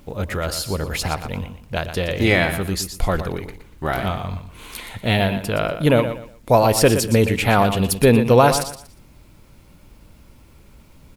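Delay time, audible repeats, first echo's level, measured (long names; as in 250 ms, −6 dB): 119 ms, 3, −10.0 dB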